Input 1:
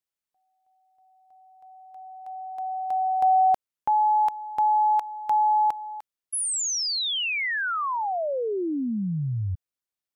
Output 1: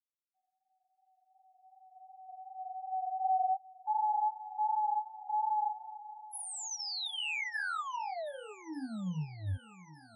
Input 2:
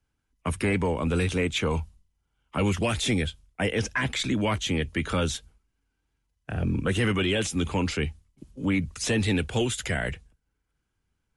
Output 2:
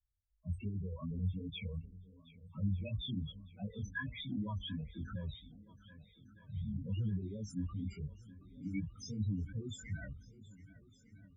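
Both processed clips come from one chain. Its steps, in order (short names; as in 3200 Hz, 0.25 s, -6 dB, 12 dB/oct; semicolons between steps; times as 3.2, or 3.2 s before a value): loudest bins only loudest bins 4; chorus 2.7 Hz, delay 18.5 ms, depth 3.9 ms; bell 440 Hz -14.5 dB 0.98 oct; swung echo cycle 1.206 s, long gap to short 1.5:1, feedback 50%, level -19 dB; gain -4.5 dB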